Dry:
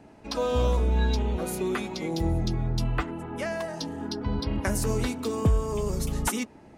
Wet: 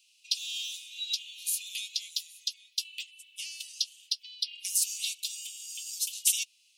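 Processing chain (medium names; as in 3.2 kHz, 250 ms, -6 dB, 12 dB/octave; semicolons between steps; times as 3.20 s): steep high-pass 2.7 kHz 72 dB/octave; trim +7.5 dB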